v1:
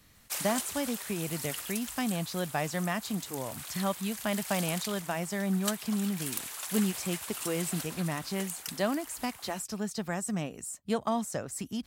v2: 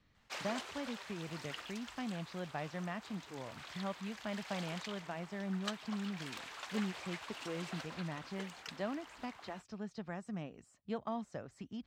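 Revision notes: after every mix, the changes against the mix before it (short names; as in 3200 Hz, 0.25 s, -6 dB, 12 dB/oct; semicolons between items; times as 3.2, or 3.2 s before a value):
speech -9.0 dB; master: add air absorption 190 m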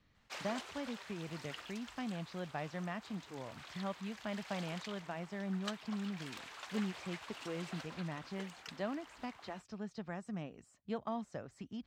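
reverb: off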